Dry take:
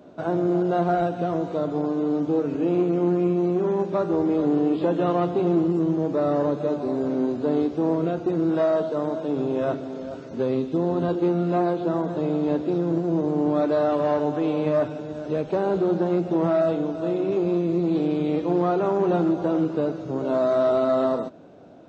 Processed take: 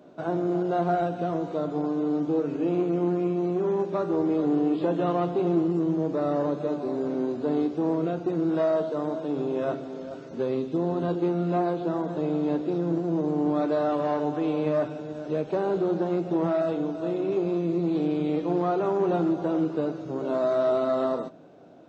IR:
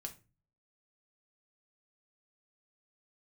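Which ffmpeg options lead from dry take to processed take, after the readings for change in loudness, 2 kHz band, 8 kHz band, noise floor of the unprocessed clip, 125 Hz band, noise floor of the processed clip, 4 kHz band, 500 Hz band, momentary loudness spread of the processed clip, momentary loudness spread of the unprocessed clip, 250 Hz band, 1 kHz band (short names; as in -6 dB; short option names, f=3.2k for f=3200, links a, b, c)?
-3.0 dB, -3.0 dB, n/a, -35 dBFS, -3.5 dB, -39 dBFS, -3.0 dB, -3.0 dB, 5 LU, 5 LU, -3.0 dB, -2.5 dB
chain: -filter_complex "[0:a]lowshelf=f=87:g=-9,asplit=2[a][b];[1:a]atrim=start_sample=2205[c];[b][c]afir=irnorm=-1:irlink=0,volume=-4dB[d];[a][d]amix=inputs=2:normalize=0,volume=-5.5dB"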